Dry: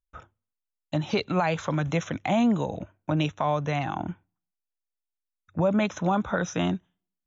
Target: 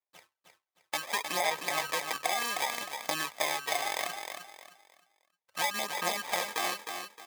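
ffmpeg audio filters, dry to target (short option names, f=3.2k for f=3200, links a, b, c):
-af "acrusher=samples=31:mix=1:aa=0.000001,highpass=950,acompressor=threshold=-31dB:ratio=6,aphaser=in_gain=1:out_gain=1:delay=2.7:decay=0.46:speed=0.67:type=sinusoidal,aecho=1:1:310|620|930|1240:0.473|0.142|0.0426|0.0128,dynaudnorm=f=210:g=5:m=4dB"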